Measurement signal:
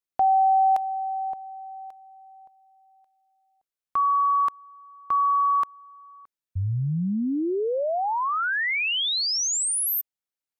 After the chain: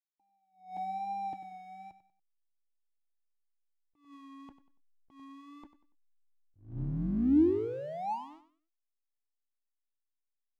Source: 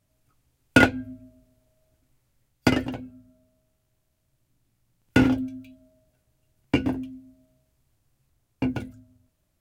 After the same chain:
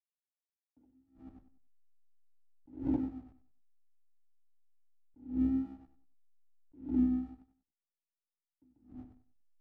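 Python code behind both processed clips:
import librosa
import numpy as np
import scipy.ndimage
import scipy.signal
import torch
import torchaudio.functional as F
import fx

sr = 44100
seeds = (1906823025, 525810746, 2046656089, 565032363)

p1 = fx.octave_divider(x, sr, octaves=2, level_db=-4.0)
p2 = fx.env_lowpass(p1, sr, base_hz=640.0, full_db=-21.5)
p3 = fx.over_compress(p2, sr, threshold_db=-29.0, ratio=-1.0)
p4 = p2 + F.gain(torch.from_numpy(p3), 2.0).numpy()
p5 = 10.0 ** (-13.5 / 20.0) * np.tanh(p4 / 10.0 ** (-13.5 / 20.0))
p6 = fx.formant_cascade(p5, sr, vowel='u')
p7 = fx.backlash(p6, sr, play_db=-44.5)
p8 = fx.vibrato(p7, sr, rate_hz=1.1, depth_cents=56.0)
p9 = p8 + fx.echo_feedback(p8, sr, ms=95, feedback_pct=32, wet_db=-13, dry=0)
y = fx.attack_slew(p9, sr, db_per_s=140.0)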